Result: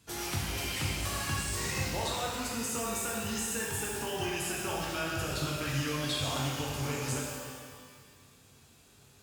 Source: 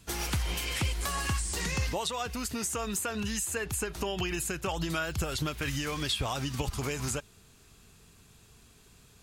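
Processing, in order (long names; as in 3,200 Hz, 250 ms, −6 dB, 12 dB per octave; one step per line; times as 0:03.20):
high-pass filter 78 Hz 12 dB per octave
reverb with rising layers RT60 1.7 s, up +12 semitones, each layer −8 dB, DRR −4 dB
level −6.5 dB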